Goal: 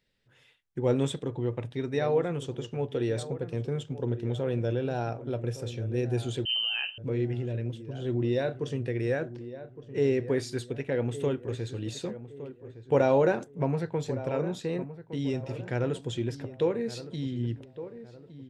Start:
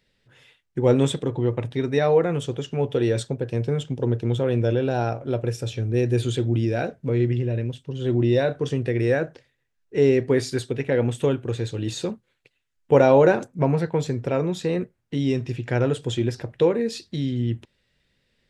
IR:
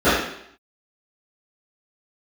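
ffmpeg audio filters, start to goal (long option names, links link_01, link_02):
-filter_complex "[0:a]asplit=2[link_01][link_02];[link_02]adelay=1163,lowpass=frequency=1500:poles=1,volume=-13dB,asplit=2[link_03][link_04];[link_04]adelay=1163,lowpass=frequency=1500:poles=1,volume=0.4,asplit=2[link_05][link_06];[link_06]adelay=1163,lowpass=frequency=1500:poles=1,volume=0.4,asplit=2[link_07][link_08];[link_08]adelay=1163,lowpass=frequency=1500:poles=1,volume=0.4[link_09];[link_01][link_03][link_05][link_07][link_09]amix=inputs=5:normalize=0,asettb=1/sr,asplit=3[link_10][link_11][link_12];[link_10]atrim=end=6.454[link_13];[link_11]atrim=start=6.45:end=6.98,asetpts=PTS-STARTPTS,afade=type=in:duration=0.004:curve=qsin,afade=type=out:start_time=0.526:duration=0.004:curve=qsin,lowpass=frequency=2700:width_type=q:width=0.5098,lowpass=frequency=2700:width_type=q:width=0.6013,lowpass=frequency=2700:width_type=q:width=0.9,lowpass=frequency=2700:width_type=q:width=2.563,afreqshift=-3200[link_14];[link_12]atrim=start=6.976[link_15];[link_13][link_14]acrossfade=duration=0.004:curve1=hsin:curve2=qsin[link_16];[link_16][link_15]acrossfade=duration=0.004:curve1=qsin:curve2=hsin,volume=-7.5dB"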